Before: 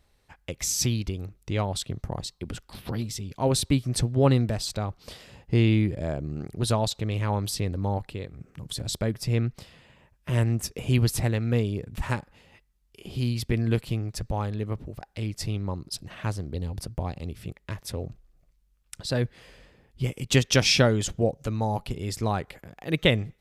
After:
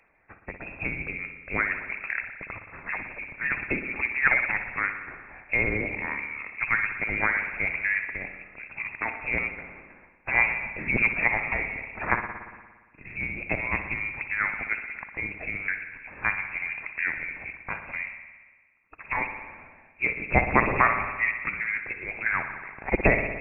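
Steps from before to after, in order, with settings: high-pass 51 Hz; spectral gate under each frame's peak -10 dB weak; peaking EQ 330 Hz -7.5 dB 0.24 oct; frequency inversion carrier 2.6 kHz; phaser 0.83 Hz, delay 1.3 ms, feedback 21%; spring tank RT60 1.4 s, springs 57 ms, chirp 30 ms, DRR 6.5 dB; trim +8.5 dB

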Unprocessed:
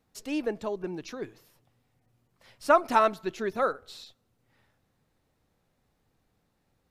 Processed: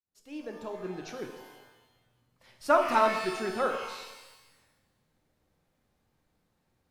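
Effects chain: fade-in on the opening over 1.09 s; pitch-shifted reverb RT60 1.1 s, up +12 st, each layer -8 dB, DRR 3.5 dB; trim -3 dB

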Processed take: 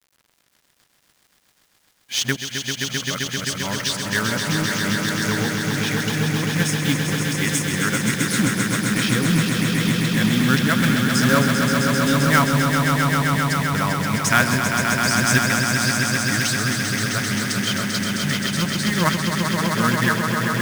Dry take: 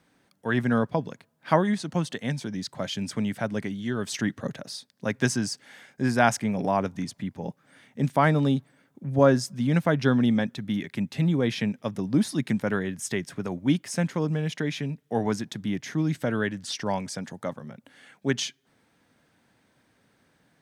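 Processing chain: reverse the whole clip; FFT filter 130 Hz 0 dB, 790 Hz -10 dB, 1.3 kHz +5 dB; companded quantiser 4-bit; echo with a slow build-up 131 ms, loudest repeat 5, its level -6 dB; trim +3 dB

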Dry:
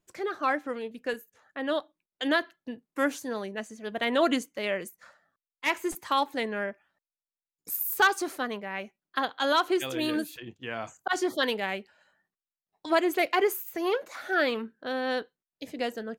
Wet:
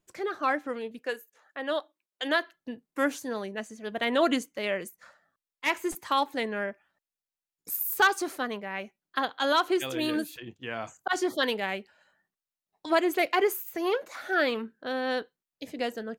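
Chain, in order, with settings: 0.99–2.54 s: high-pass 360 Hz 12 dB/octave

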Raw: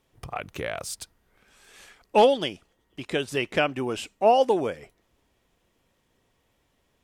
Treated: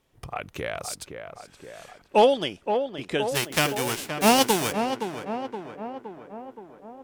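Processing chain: 3.34–4.71 s: formants flattened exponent 0.3; tape echo 519 ms, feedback 69%, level -6 dB, low-pass 1.6 kHz

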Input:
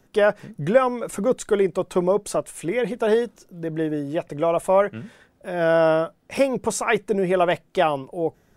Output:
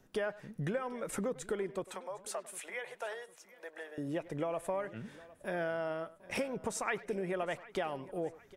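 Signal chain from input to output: compression 8:1, threshold -27 dBFS, peak gain reduction 16.5 dB; 1.84–3.98 s: high-pass 610 Hz 24 dB/octave; speakerphone echo 100 ms, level -17 dB; dynamic bell 1.8 kHz, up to +5 dB, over -50 dBFS, Q 2.2; feedback delay 757 ms, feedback 40%, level -20 dB; trim -6 dB

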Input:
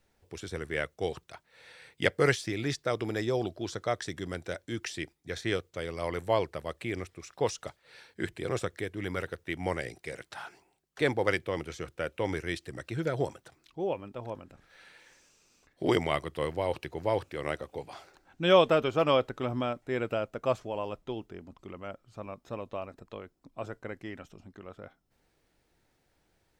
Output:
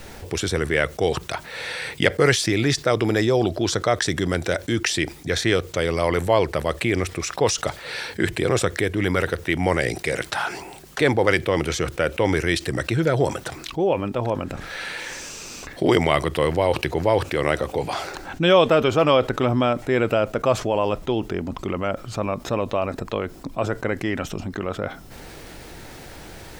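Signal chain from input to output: level flattener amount 50%; trim +4.5 dB

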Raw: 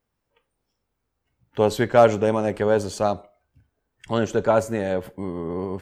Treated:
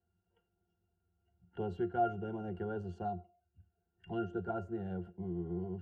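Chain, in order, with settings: pitch-class resonator F, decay 0.13 s; three bands compressed up and down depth 40%; trim -4.5 dB

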